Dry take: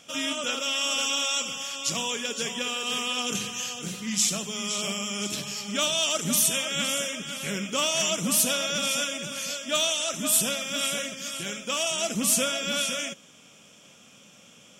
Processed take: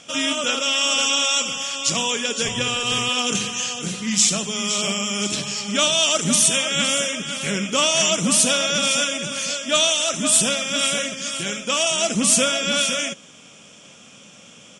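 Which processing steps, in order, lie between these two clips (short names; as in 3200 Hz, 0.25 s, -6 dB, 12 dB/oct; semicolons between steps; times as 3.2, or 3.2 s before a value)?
2.44–3.09 octaver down 1 oct, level -1 dB; downsampling 22050 Hz; gain +7 dB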